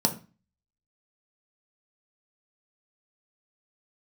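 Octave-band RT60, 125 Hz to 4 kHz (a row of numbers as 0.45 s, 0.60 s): 0.45 s, 0.45 s, 0.30 s, 0.35 s, 0.35 s, 0.30 s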